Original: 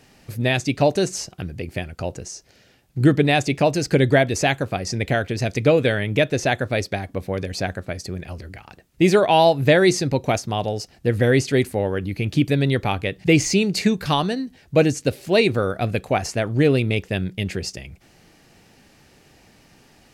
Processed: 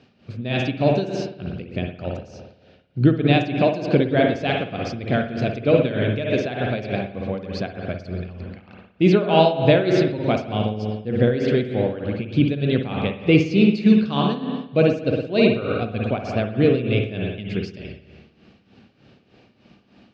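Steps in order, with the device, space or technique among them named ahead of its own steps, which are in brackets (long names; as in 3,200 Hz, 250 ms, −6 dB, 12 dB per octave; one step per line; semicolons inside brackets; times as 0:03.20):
combo amplifier with spring reverb and tremolo (spring reverb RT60 1.4 s, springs 56 ms, chirp 75 ms, DRR 1 dB; amplitude tremolo 3.3 Hz, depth 72%; loudspeaker in its box 75–4,200 Hz, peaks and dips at 220 Hz +6 dB, 870 Hz −6 dB, 1,900 Hz −9 dB)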